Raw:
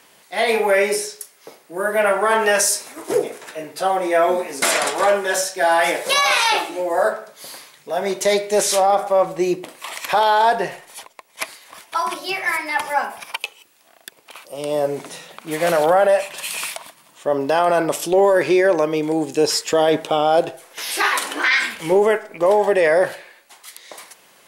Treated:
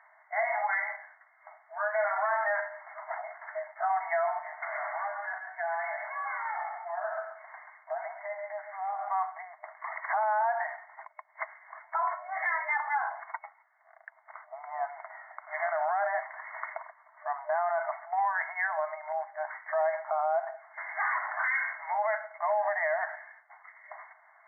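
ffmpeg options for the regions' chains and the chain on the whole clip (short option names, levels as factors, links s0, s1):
-filter_complex "[0:a]asettb=1/sr,asplit=3[s0][s1][s2];[s0]atrim=end=4.394[s3];[s1]atrim=start=4.39:end=9.08,asetpts=PTS-STARTPTS,afade=t=in:d=0.004:c=qsin,afade=t=out:st=4.686:d=0.004:c=qsin,acompressor=threshold=0.0562:ratio=8:attack=3.2:release=140:knee=1:detection=peak,aecho=1:1:135:0.422,atrim=end_sample=206829[s4];[s2]atrim=start=9.076[s5];[s3][s4]acrossfade=d=0.004:c1=hsin:c2=qsin[s6];[s6][s5]acrossfade=d=0.004:c1=qsin:c2=hsin,afftfilt=real='re*between(b*sr/4096,610,2200)':imag='im*between(b*sr/4096,610,2200)':win_size=4096:overlap=0.75,alimiter=limit=0.141:level=0:latency=1:release=99,volume=0.668"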